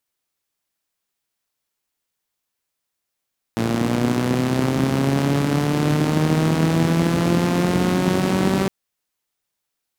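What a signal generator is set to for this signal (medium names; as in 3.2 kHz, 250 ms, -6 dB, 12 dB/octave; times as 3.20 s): four-cylinder engine model, changing speed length 5.11 s, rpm 3400, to 5800, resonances 160/240 Hz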